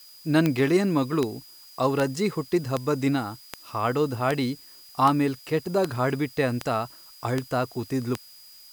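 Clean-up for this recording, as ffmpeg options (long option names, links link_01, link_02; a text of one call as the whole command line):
ffmpeg -i in.wav -af "adeclick=threshold=4,bandreject=frequency=4900:width=30,afftdn=noise_reduction=21:noise_floor=-49" out.wav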